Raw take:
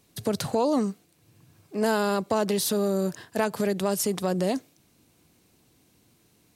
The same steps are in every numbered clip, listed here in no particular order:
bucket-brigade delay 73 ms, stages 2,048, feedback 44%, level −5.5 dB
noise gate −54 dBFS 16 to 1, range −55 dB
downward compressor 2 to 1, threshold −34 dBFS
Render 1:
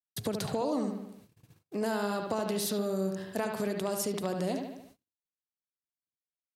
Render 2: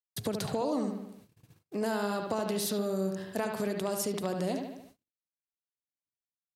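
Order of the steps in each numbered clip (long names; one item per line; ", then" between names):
bucket-brigade delay, then noise gate, then downward compressor
bucket-brigade delay, then downward compressor, then noise gate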